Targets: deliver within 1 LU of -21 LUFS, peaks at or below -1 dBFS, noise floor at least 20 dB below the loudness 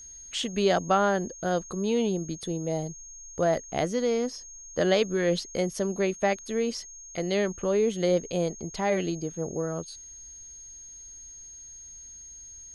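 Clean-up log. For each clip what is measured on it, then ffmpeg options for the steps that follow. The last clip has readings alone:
steady tone 6500 Hz; tone level -43 dBFS; loudness -28.0 LUFS; peak -10.0 dBFS; loudness target -21.0 LUFS
-> -af "bandreject=f=6.5k:w=30"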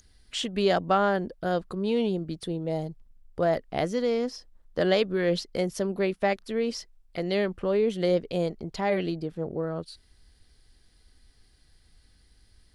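steady tone none; loudness -28.0 LUFS; peak -10.5 dBFS; loudness target -21.0 LUFS
-> -af "volume=7dB"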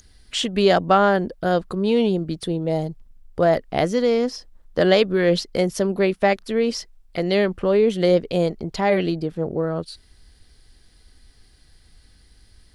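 loudness -21.0 LUFS; peak -3.5 dBFS; noise floor -55 dBFS

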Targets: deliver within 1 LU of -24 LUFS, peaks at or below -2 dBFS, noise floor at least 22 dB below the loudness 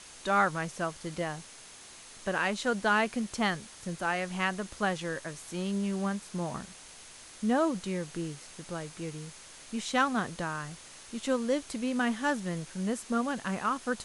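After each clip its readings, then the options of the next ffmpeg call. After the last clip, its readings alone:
steady tone 6400 Hz; tone level -59 dBFS; noise floor -50 dBFS; noise floor target -54 dBFS; loudness -32.0 LUFS; peak -12.5 dBFS; loudness target -24.0 LUFS
-> -af "bandreject=f=6.4k:w=30"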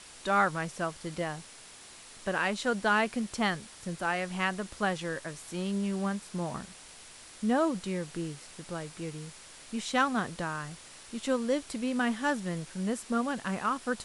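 steady tone none; noise floor -51 dBFS; noise floor target -54 dBFS
-> -af "afftdn=nr=6:nf=-51"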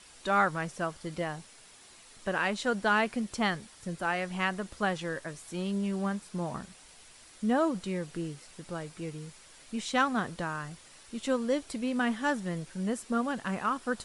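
noise floor -55 dBFS; loudness -32.0 LUFS; peak -12.5 dBFS; loudness target -24.0 LUFS
-> -af "volume=8dB"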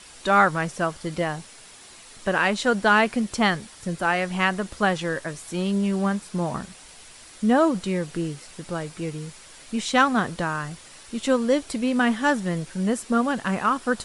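loudness -24.0 LUFS; peak -4.5 dBFS; noise floor -47 dBFS

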